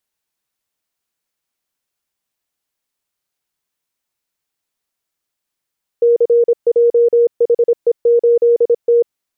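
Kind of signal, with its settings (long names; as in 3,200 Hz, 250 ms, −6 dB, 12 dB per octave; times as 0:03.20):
Morse code "CJHE8T" 26 words per minute 472 Hz −7.5 dBFS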